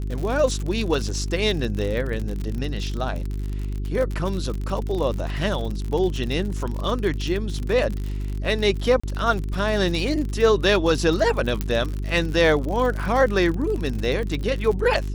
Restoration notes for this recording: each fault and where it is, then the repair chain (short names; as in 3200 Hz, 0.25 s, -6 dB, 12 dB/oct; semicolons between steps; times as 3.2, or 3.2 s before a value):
crackle 54/s -27 dBFS
hum 50 Hz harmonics 8 -27 dBFS
9–9.04 gap 35 ms
11.61 pop -10 dBFS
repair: de-click; de-hum 50 Hz, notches 8; interpolate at 9, 35 ms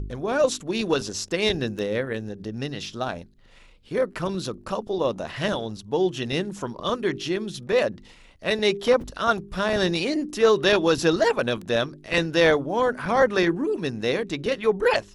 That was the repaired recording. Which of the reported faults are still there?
11.61 pop